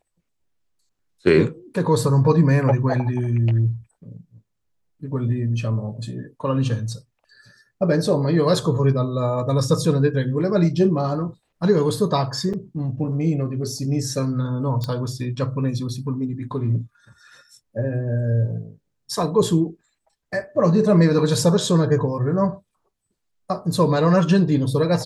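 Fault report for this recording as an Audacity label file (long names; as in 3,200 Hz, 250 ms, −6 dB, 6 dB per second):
12.530000	12.540000	drop-out 5.7 ms
14.840000	14.840000	click −14 dBFS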